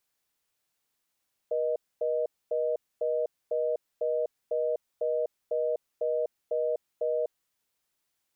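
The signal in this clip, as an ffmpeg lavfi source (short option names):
-f lavfi -i "aevalsrc='0.0398*(sin(2*PI*480*t)+sin(2*PI*620*t))*clip(min(mod(t,0.5),0.25-mod(t,0.5))/0.005,0,1)':d=5.98:s=44100"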